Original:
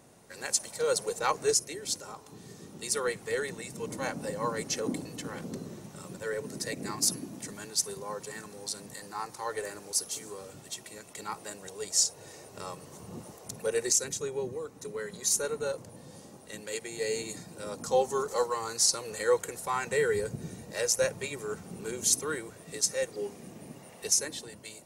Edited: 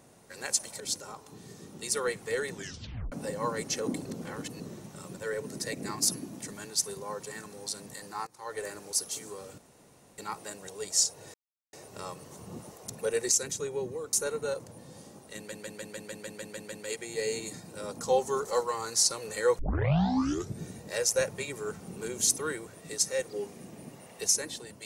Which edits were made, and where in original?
0.80–1.80 s: delete
3.53 s: tape stop 0.59 s
5.06–5.60 s: reverse
9.27–9.66 s: fade in, from -20.5 dB
10.58–11.18 s: room tone
12.34 s: insert silence 0.39 s
14.74–15.31 s: delete
16.55 s: stutter 0.15 s, 10 plays
19.42 s: tape start 1.02 s

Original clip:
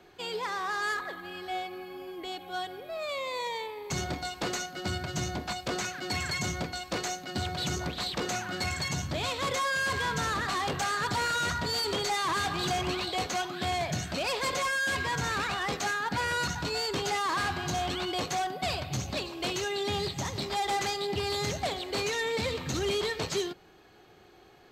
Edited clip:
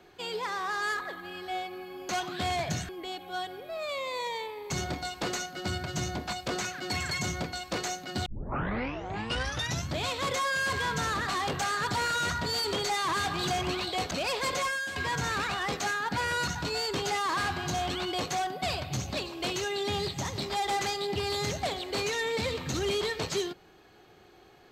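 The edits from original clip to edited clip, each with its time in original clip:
7.46 s: tape start 1.62 s
13.31–14.11 s: move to 2.09 s
14.64–14.96 s: fade out, to -10.5 dB

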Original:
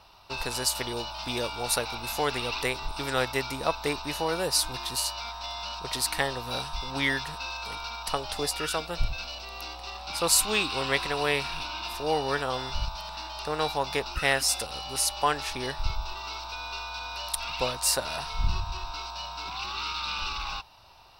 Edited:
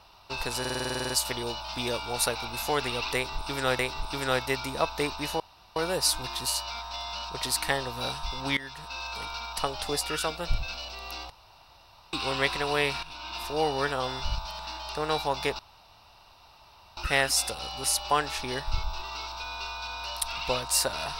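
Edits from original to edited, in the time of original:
0.60 s: stutter 0.05 s, 11 plays
2.65–3.29 s: loop, 2 plays
4.26 s: insert room tone 0.36 s
7.07–7.57 s: fade in, from -18 dB
9.80–10.63 s: room tone
11.53–11.94 s: fade in, from -13 dB
14.09 s: insert room tone 1.38 s

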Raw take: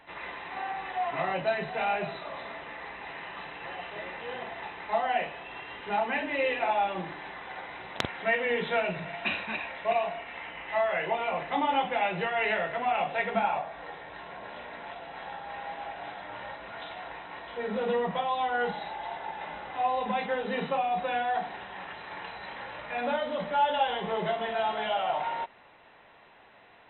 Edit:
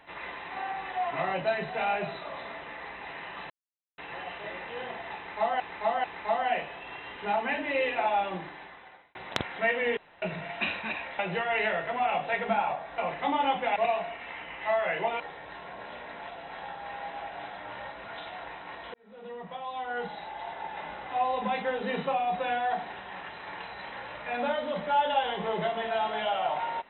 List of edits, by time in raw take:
3.50 s: insert silence 0.48 s
4.68–5.12 s: loop, 3 plays
6.91–7.79 s: fade out
8.61–8.86 s: room tone
9.83–11.27 s: swap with 12.05–13.84 s
17.58–19.39 s: fade in

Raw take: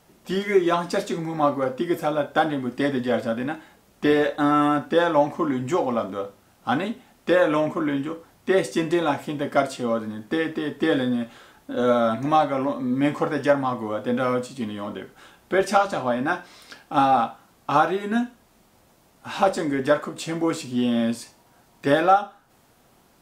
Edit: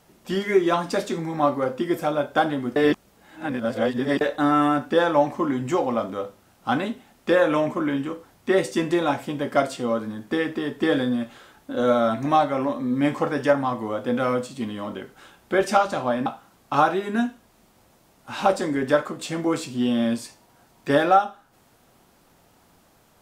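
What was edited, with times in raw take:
2.76–4.21 s: reverse
16.26–17.23 s: delete

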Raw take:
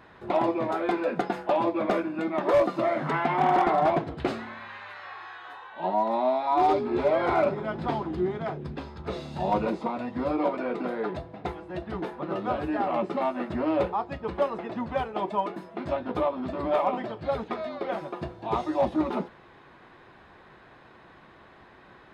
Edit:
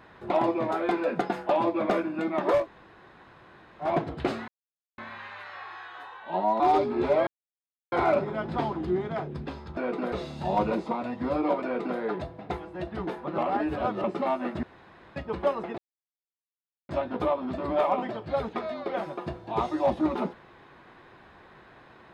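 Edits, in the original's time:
2.60–3.87 s: room tone, crossfade 0.16 s
4.48 s: insert silence 0.50 s
6.10–6.55 s: delete
7.22 s: insert silence 0.65 s
10.59–10.94 s: copy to 9.07 s
12.33–12.99 s: reverse
13.58–14.11 s: room tone
14.73–15.84 s: mute

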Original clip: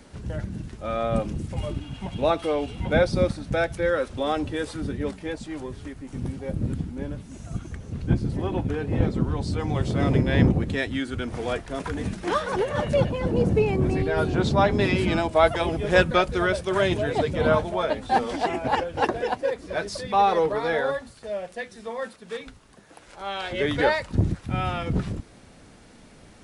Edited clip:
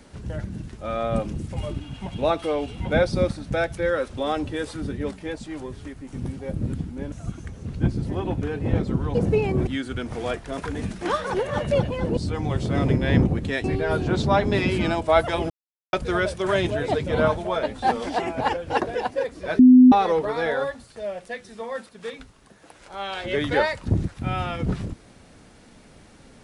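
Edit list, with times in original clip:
7.12–7.39 s: delete
9.42–10.89 s: swap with 13.39–13.91 s
15.77–16.20 s: mute
19.86–20.19 s: bleep 253 Hz -7 dBFS

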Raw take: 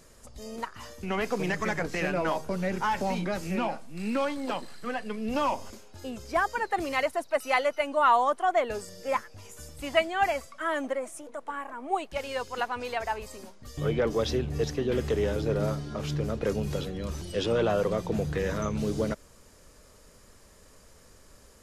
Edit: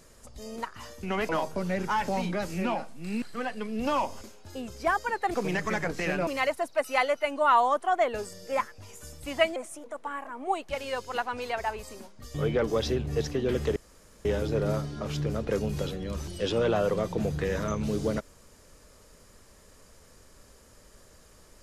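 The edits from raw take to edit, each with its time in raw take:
1.29–2.22 s: move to 6.83 s
4.15–4.71 s: delete
10.12–10.99 s: delete
15.19 s: insert room tone 0.49 s

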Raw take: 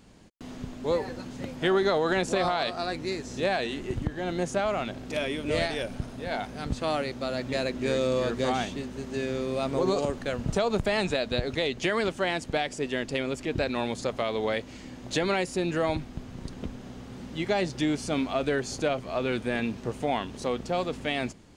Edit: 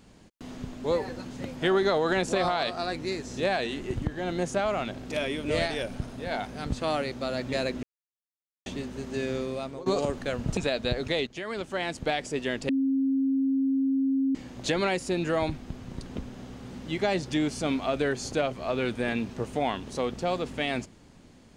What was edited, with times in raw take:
7.83–8.66 s: mute
9.36–9.86 s: fade out, to -19.5 dB
10.57–11.04 s: delete
11.74–12.58 s: fade in linear, from -14 dB
13.16–14.82 s: bleep 269 Hz -22 dBFS

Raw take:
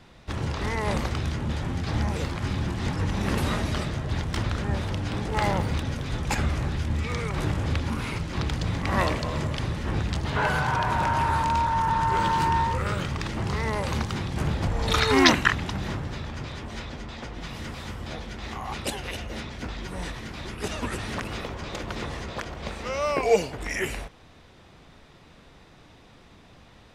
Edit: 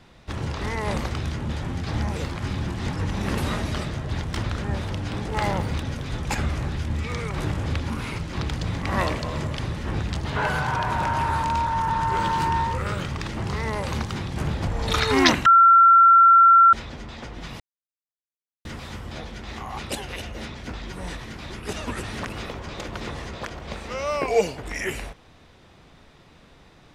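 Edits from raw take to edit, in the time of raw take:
15.46–16.73 s: bleep 1.36 kHz -9.5 dBFS
17.60 s: insert silence 1.05 s

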